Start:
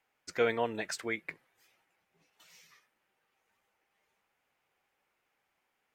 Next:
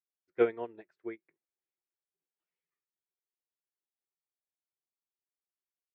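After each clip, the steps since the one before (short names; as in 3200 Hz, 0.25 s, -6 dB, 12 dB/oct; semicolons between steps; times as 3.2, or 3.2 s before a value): LPF 2200 Hz 12 dB/oct; bell 360 Hz +13 dB 0.5 oct; upward expander 2.5:1, over -41 dBFS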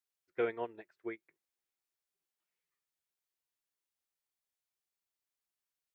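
limiter -23 dBFS, peak gain reduction 9 dB; bell 250 Hz -5.5 dB 2.8 oct; gain +3.5 dB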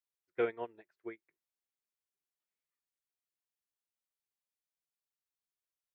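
upward expander 1.5:1, over -45 dBFS; gain +1.5 dB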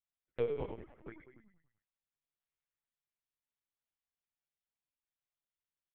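frequency-shifting echo 96 ms, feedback 54%, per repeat -36 Hz, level -5 dB; envelope flanger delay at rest 7.2 ms, full sweep at -36 dBFS; LPC vocoder at 8 kHz pitch kept; gain -1 dB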